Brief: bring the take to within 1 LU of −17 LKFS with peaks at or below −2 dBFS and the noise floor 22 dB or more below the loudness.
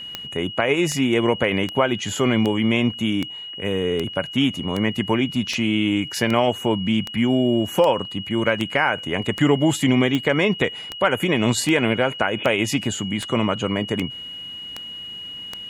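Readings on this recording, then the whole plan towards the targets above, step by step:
number of clicks 21; interfering tone 2,900 Hz; level of the tone −32 dBFS; integrated loudness −21.0 LKFS; sample peak −3.5 dBFS; target loudness −17.0 LKFS
→ click removal
notch filter 2,900 Hz, Q 30
level +4 dB
brickwall limiter −2 dBFS

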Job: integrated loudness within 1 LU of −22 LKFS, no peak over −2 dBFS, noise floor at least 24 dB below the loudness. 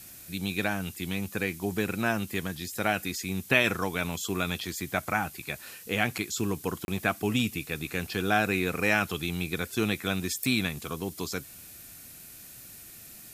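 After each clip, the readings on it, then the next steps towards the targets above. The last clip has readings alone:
number of dropouts 1; longest dropout 31 ms; background noise floor −48 dBFS; target noise floor −54 dBFS; integrated loudness −29.5 LKFS; sample peak −6.5 dBFS; target loudness −22.0 LKFS
→ repair the gap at 0:06.85, 31 ms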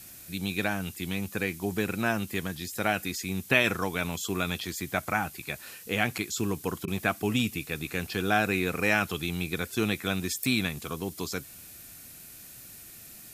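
number of dropouts 0; background noise floor −48 dBFS; target noise floor −54 dBFS
→ broadband denoise 6 dB, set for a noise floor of −48 dBFS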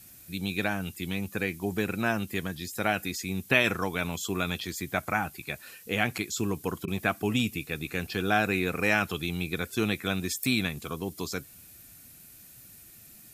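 background noise floor −52 dBFS; target noise floor −54 dBFS
→ broadband denoise 6 dB, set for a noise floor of −52 dBFS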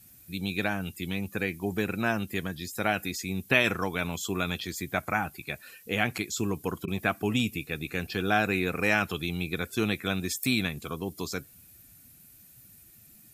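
background noise floor −55 dBFS; integrated loudness −29.5 LKFS; sample peak −6.5 dBFS; target loudness −22.0 LKFS
→ level +7.5 dB
brickwall limiter −2 dBFS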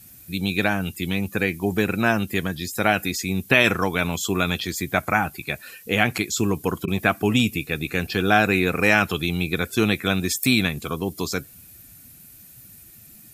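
integrated loudness −22.5 LKFS; sample peak −2.0 dBFS; background noise floor −47 dBFS

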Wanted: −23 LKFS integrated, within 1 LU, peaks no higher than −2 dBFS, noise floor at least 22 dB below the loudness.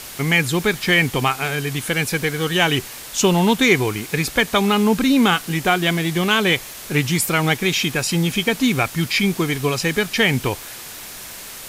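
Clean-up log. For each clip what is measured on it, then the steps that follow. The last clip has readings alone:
background noise floor −36 dBFS; target noise floor −41 dBFS; integrated loudness −18.5 LKFS; sample peak −2.5 dBFS; target loudness −23.0 LKFS
→ broadband denoise 6 dB, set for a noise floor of −36 dBFS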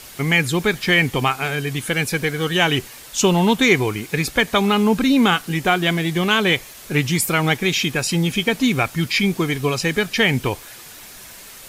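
background noise floor −40 dBFS; target noise floor −41 dBFS
→ broadband denoise 6 dB, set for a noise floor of −40 dBFS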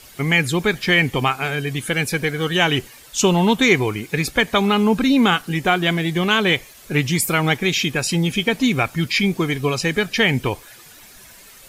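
background noise floor −45 dBFS; integrated loudness −19.0 LKFS; sample peak −2.5 dBFS; target loudness −23.0 LKFS
→ level −4 dB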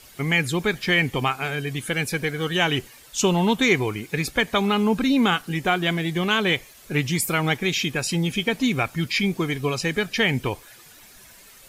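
integrated loudness −23.0 LKFS; sample peak −6.5 dBFS; background noise floor −49 dBFS

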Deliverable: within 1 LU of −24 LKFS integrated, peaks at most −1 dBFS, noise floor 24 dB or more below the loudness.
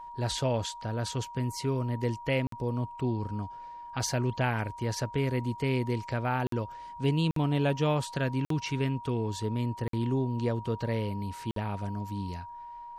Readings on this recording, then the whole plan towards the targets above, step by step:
number of dropouts 6; longest dropout 53 ms; interfering tone 950 Hz; level of the tone −41 dBFS; integrated loudness −31.0 LKFS; sample peak −14.5 dBFS; target loudness −24.0 LKFS
→ repair the gap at 0:02.47/0:06.47/0:07.31/0:08.45/0:09.88/0:11.51, 53 ms
notch filter 950 Hz, Q 30
level +7 dB

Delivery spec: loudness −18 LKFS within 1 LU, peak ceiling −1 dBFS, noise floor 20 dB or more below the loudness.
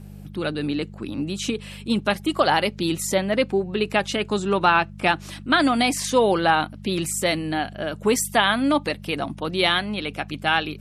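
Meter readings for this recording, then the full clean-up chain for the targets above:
mains hum 50 Hz; hum harmonics up to 200 Hz; level of the hum −38 dBFS; integrated loudness −22.5 LKFS; sample peak −3.5 dBFS; target loudness −18.0 LKFS
→ hum removal 50 Hz, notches 4
level +4.5 dB
brickwall limiter −1 dBFS

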